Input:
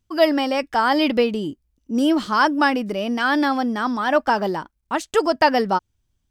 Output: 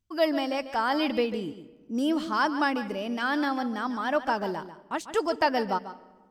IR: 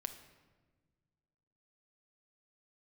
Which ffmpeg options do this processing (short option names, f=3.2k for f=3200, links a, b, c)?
-filter_complex "[0:a]asplit=2[a][b];[1:a]atrim=start_sample=2205,adelay=144[c];[b][c]afir=irnorm=-1:irlink=0,volume=-9.5dB[d];[a][d]amix=inputs=2:normalize=0,volume=-8dB"